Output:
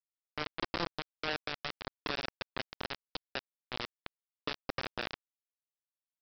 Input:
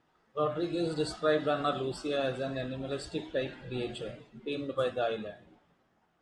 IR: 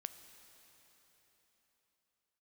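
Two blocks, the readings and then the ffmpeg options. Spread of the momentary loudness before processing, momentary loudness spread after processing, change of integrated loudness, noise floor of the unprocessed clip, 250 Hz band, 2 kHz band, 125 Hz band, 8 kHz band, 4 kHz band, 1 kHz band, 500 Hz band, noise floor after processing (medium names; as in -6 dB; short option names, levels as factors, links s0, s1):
10 LU, 7 LU, -6.5 dB, -72 dBFS, -11.0 dB, +0.5 dB, -9.5 dB, -10.0 dB, +1.5 dB, -5.0 dB, -13.5 dB, under -85 dBFS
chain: -af "lowpass=3200,alimiter=level_in=1.58:limit=0.0631:level=0:latency=1:release=272,volume=0.631,aresample=11025,acrusher=bits=4:mix=0:aa=0.000001,aresample=44100,volume=1.19"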